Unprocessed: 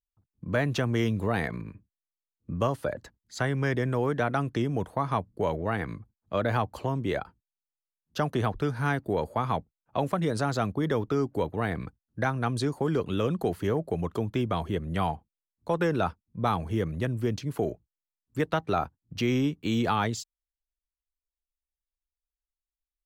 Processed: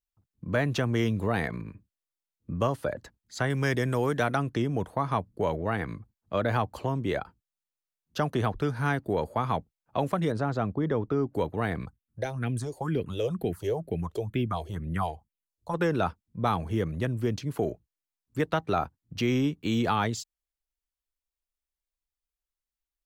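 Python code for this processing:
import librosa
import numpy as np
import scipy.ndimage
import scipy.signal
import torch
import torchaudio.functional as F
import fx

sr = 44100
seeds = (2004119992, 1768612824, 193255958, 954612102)

y = fx.high_shelf(x, sr, hz=4000.0, db=12.0, at=(3.5, 4.36))
y = fx.lowpass(y, sr, hz=1300.0, slope=6, at=(10.32, 11.33))
y = fx.phaser_stages(y, sr, stages=4, low_hz=190.0, high_hz=1200.0, hz=2.1, feedback_pct=25, at=(11.85, 15.73), fade=0.02)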